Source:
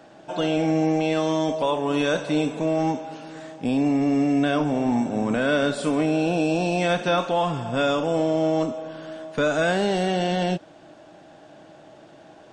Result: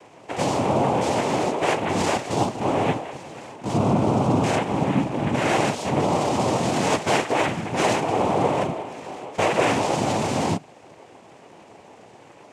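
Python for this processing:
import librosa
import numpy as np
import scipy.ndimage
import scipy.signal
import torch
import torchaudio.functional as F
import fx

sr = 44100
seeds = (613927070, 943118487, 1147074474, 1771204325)

y = fx.hum_notches(x, sr, base_hz=50, count=6)
y = fx.noise_vocoder(y, sr, seeds[0], bands=4)
y = y * librosa.db_to_amplitude(1.0)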